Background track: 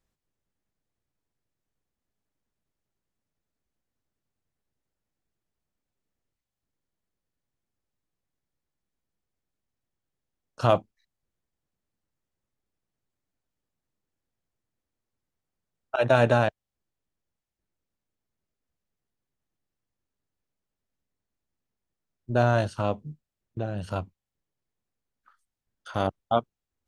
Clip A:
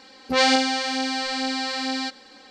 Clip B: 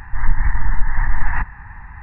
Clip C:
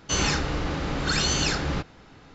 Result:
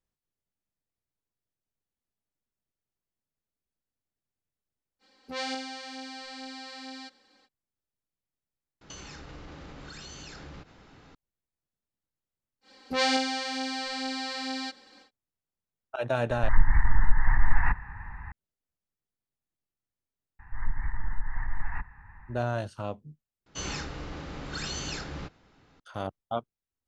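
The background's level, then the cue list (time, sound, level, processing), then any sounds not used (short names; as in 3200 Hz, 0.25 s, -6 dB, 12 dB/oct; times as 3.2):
background track -8 dB
4.99 add A -15.5 dB, fades 0.05 s
8.81 replace with C -4 dB + compressor 10:1, threshold -37 dBFS
12.61 add A -7 dB, fades 0.10 s
16.3 add B -4.5 dB
20.39 add B -14 dB
23.46 replace with C -11 dB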